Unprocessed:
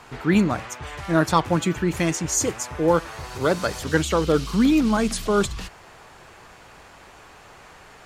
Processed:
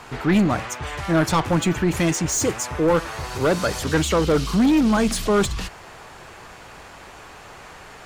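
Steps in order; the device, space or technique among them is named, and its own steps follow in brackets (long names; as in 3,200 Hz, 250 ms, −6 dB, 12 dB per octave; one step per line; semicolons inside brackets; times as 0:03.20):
saturation between pre-emphasis and de-emphasis (high-shelf EQ 3,000 Hz +8 dB; soft clipping −17.5 dBFS, distortion −11 dB; high-shelf EQ 3,000 Hz −8 dB)
level +5 dB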